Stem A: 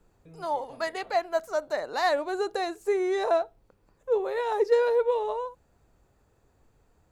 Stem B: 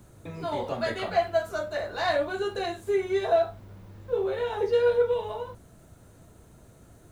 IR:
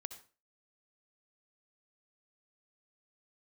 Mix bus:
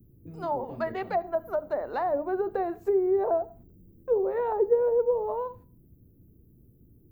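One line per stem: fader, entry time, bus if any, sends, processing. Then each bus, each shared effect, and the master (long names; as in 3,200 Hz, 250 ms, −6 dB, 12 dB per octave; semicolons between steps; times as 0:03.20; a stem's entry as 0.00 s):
−1.0 dB, 0.00 s, send −5.5 dB, noise gate −51 dBFS, range −22 dB; treble cut that deepens with the level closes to 650 Hz, closed at −23 dBFS; high-shelf EQ 2,400 Hz −9 dB
−4.0 dB, 0.00 s, send −8 dB, inverse Chebyshev band-stop filter 880–7,800 Hz, stop band 50 dB; high-shelf EQ 6,600 Hz +5.5 dB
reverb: on, RT60 0.35 s, pre-delay 57 ms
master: mains-hum notches 50/100/150/200 Hz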